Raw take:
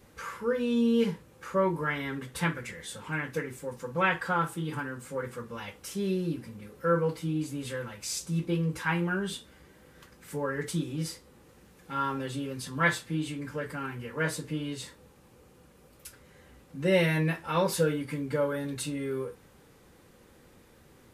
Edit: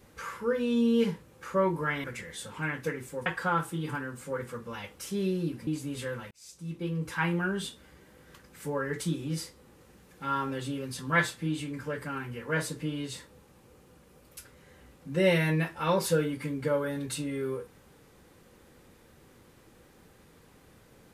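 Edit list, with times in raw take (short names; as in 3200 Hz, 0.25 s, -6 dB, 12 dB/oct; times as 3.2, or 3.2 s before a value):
2.04–2.54 cut
3.76–4.1 cut
6.51–7.35 cut
7.99–8.94 fade in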